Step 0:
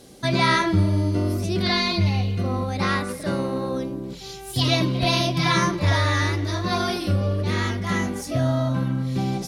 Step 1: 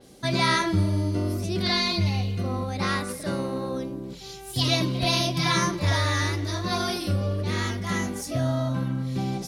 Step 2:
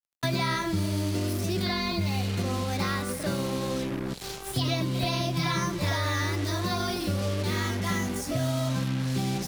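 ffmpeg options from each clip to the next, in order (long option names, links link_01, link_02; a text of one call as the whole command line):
ffmpeg -i in.wav -af "adynamicequalizer=threshold=0.0141:dfrequency=4200:dqfactor=0.7:tfrequency=4200:tqfactor=0.7:attack=5:release=100:ratio=0.375:range=3:mode=boostabove:tftype=highshelf,volume=-3.5dB" out.wav
ffmpeg -i in.wav -filter_complex "[0:a]acrusher=bits=5:mix=0:aa=0.5,acrossover=split=140|2300[link_01][link_02][link_03];[link_01]acompressor=threshold=-39dB:ratio=4[link_04];[link_02]acompressor=threshold=-35dB:ratio=4[link_05];[link_03]acompressor=threshold=-42dB:ratio=4[link_06];[link_04][link_05][link_06]amix=inputs=3:normalize=0,volume=5.5dB" out.wav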